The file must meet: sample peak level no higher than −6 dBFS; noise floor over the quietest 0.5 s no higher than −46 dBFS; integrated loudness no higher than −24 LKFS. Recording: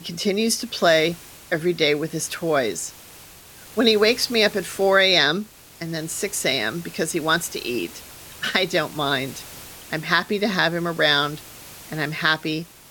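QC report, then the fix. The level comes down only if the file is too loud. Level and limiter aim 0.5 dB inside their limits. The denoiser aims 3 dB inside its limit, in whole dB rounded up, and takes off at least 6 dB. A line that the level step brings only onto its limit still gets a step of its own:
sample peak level −3.0 dBFS: out of spec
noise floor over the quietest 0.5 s −45 dBFS: out of spec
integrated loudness −21.5 LKFS: out of spec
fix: level −3 dB
brickwall limiter −6.5 dBFS

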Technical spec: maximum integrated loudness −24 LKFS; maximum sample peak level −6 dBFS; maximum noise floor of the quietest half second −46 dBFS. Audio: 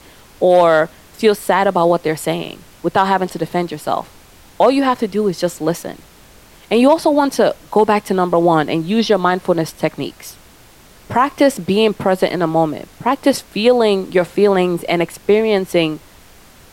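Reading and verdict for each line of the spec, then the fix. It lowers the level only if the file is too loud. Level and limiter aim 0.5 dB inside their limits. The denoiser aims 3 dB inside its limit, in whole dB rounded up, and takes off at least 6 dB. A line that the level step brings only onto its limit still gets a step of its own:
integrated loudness −16.0 LKFS: out of spec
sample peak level −2.5 dBFS: out of spec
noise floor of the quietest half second −45 dBFS: out of spec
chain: level −8.5 dB

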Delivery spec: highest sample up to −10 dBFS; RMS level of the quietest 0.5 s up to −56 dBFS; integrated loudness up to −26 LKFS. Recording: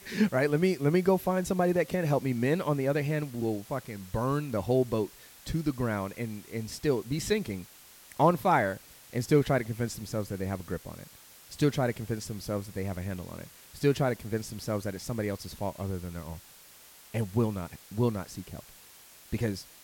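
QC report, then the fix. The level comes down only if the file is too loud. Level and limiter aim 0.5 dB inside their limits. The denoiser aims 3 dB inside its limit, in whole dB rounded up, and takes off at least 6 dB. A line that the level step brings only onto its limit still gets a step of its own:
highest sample −11.5 dBFS: in spec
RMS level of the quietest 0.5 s −54 dBFS: out of spec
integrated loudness −30.0 LKFS: in spec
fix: broadband denoise 6 dB, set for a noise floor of −54 dBFS

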